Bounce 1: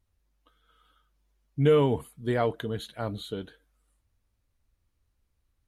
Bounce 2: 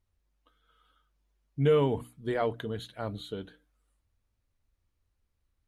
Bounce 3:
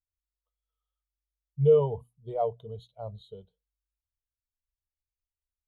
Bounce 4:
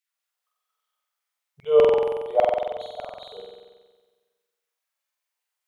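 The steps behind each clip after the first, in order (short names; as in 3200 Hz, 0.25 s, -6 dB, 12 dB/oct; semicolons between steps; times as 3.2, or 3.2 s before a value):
high shelf 8700 Hz -6 dB; notches 60/120/180/240/300 Hz; gain -2.5 dB
fixed phaser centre 700 Hz, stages 4; spectral expander 1.5:1; gain +6.5 dB
LFO high-pass saw down 5 Hz 550–2500 Hz; flutter echo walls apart 7.9 m, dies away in 1.4 s; gain +7 dB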